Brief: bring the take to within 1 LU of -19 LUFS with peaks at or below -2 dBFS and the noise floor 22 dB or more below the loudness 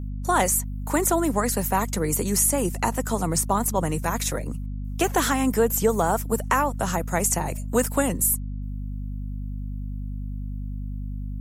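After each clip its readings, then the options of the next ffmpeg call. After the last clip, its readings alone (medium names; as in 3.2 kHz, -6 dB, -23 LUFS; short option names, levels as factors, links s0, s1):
hum 50 Hz; highest harmonic 250 Hz; hum level -28 dBFS; loudness -24.5 LUFS; peak level -8.5 dBFS; loudness target -19.0 LUFS
-> -af "bandreject=f=50:t=h:w=4,bandreject=f=100:t=h:w=4,bandreject=f=150:t=h:w=4,bandreject=f=200:t=h:w=4,bandreject=f=250:t=h:w=4"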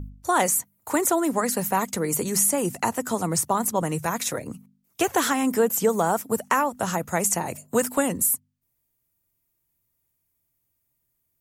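hum not found; loudness -23.5 LUFS; peak level -8.5 dBFS; loudness target -19.0 LUFS
-> -af "volume=1.68"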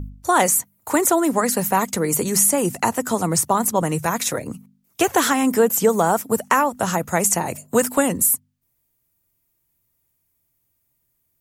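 loudness -19.5 LUFS; peak level -4.0 dBFS; noise floor -71 dBFS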